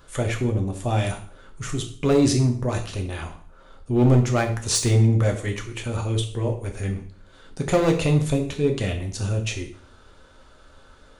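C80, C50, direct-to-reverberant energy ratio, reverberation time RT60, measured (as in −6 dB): 13.5 dB, 9.5 dB, 2.5 dB, 0.50 s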